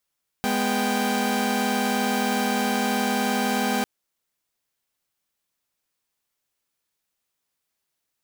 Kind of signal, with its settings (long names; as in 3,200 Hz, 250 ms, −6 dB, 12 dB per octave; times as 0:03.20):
held notes G#3/B3/G5 saw, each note −23.5 dBFS 3.40 s